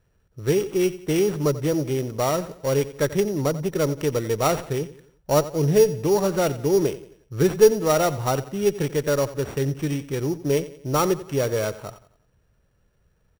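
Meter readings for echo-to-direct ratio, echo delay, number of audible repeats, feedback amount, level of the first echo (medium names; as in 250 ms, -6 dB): -15.0 dB, 89 ms, 3, 43%, -16.0 dB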